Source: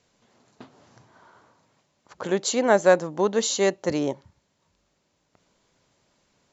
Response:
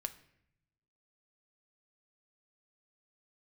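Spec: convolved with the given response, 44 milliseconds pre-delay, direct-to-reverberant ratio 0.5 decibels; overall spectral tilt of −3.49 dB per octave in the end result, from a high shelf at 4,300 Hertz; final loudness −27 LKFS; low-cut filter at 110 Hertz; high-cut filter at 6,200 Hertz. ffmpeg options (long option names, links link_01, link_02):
-filter_complex "[0:a]highpass=110,lowpass=6200,highshelf=frequency=4300:gain=4.5,asplit=2[link_01][link_02];[1:a]atrim=start_sample=2205,adelay=44[link_03];[link_02][link_03]afir=irnorm=-1:irlink=0,volume=0.5dB[link_04];[link_01][link_04]amix=inputs=2:normalize=0,volume=-7dB"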